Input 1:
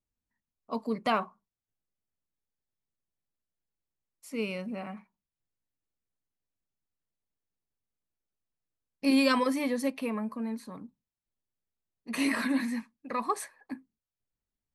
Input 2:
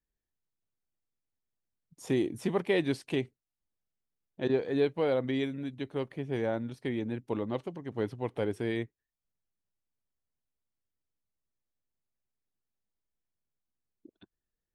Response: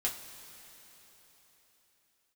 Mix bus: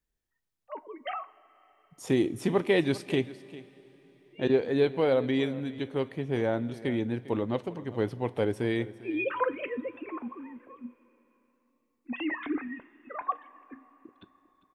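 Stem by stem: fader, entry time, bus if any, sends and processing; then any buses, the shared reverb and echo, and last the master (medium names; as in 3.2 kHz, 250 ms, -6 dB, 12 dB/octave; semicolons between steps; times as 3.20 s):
0.0 dB, 0.00 s, send -14.5 dB, no echo send, formants replaced by sine waves; Shepard-style flanger rising 0.89 Hz; auto duck -11 dB, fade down 1.05 s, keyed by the second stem
+2.0 dB, 0.00 s, send -14.5 dB, echo send -16 dB, none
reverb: on, RT60 4.1 s, pre-delay 3 ms
echo: delay 400 ms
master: none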